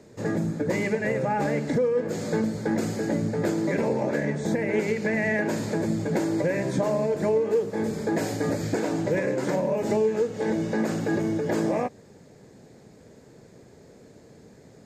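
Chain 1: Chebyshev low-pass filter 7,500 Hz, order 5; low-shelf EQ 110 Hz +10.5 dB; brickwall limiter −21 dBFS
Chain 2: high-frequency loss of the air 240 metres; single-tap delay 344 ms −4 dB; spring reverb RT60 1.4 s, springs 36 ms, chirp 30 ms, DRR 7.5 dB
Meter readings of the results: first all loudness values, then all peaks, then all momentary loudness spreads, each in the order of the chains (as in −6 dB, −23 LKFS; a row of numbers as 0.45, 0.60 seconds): −29.0, −24.0 LKFS; −21.0, −9.5 dBFS; 2, 3 LU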